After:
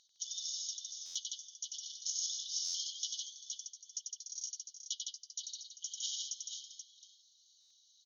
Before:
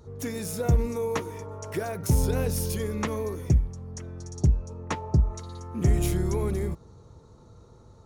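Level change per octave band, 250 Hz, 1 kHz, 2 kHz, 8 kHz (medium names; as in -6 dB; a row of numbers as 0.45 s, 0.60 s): under -40 dB, under -40 dB, under -35 dB, +2.0 dB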